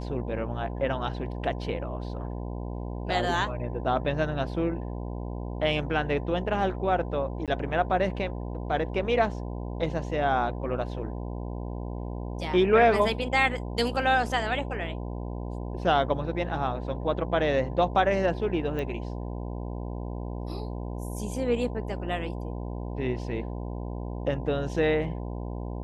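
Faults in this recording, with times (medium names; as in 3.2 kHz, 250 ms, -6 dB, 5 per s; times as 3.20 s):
buzz 60 Hz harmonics 17 -34 dBFS
7.46–7.48 s: dropout 17 ms
18.79 s: pop -22 dBFS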